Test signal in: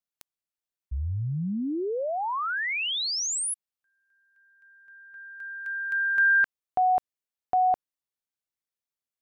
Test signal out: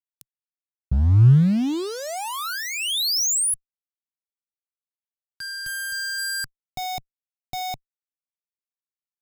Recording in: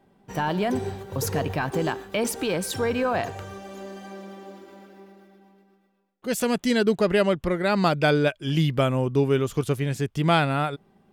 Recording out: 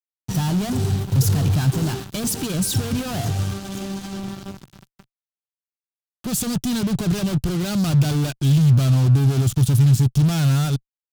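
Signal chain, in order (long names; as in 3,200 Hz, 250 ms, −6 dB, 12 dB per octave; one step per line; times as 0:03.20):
fuzz pedal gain 40 dB, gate −40 dBFS
graphic EQ with 10 bands 125 Hz +11 dB, 500 Hz −11 dB, 1,000 Hz −6 dB, 2,000 Hz −10 dB
level −6.5 dB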